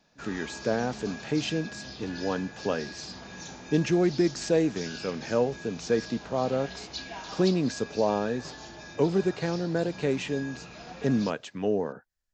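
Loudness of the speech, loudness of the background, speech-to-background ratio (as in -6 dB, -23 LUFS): -29.0 LUFS, -41.5 LUFS, 12.5 dB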